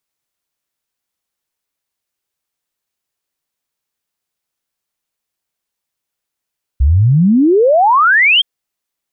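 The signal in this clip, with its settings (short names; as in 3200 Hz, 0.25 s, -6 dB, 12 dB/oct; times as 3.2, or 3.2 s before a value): log sweep 62 Hz -> 3300 Hz 1.62 s -6.5 dBFS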